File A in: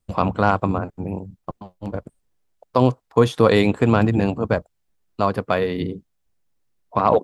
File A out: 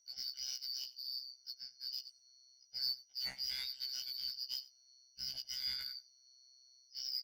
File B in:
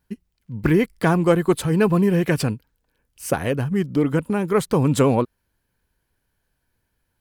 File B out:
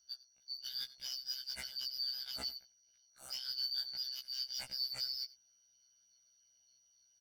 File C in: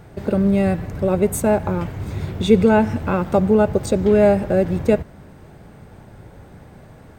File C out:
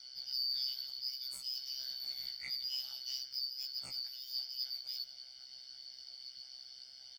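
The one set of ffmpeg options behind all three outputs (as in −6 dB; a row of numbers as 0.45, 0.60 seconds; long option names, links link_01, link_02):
-filter_complex "[0:a]afftfilt=real='real(if(lt(b,272),68*(eq(floor(b/68),0)*3+eq(floor(b/68),1)*2+eq(floor(b/68),2)*1+eq(floor(b/68),3)*0)+mod(b,68),b),0)':imag='imag(if(lt(b,272),68*(eq(floor(b/68),0)*3+eq(floor(b/68),1)*2+eq(floor(b/68),2)*1+eq(floor(b/68),3)*0)+mod(b,68),b),0)':win_size=2048:overlap=0.75,aemphasis=mode=reproduction:type=cd,aecho=1:1:1.4:0.86,areverse,acompressor=threshold=-27dB:ratio=10,areverse,tremolo=f=130:d=0.889,aeval=exprs='val(0)+0.000631*sin(2*PI*5800*n/s)':channel_layout=same,asoftclip=type=tanh:threshold=-30dB,asplit=2[link_01][link_02];[link_02]adelay=93.29,volume=-19dB,highshelf=frequency=4000:gain=-2.1[link_03];[link_01][link_03]amix=inputs=2:normalize=0,afftfilt=real='re*1.73*eq(mod(b,3),0)':imag='im*1.73*eq(mod(b,3),0)':win_size=2048:overlap=0.75,volume=-1.5dB"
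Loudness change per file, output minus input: −20.0, −18.5, −20.5 LU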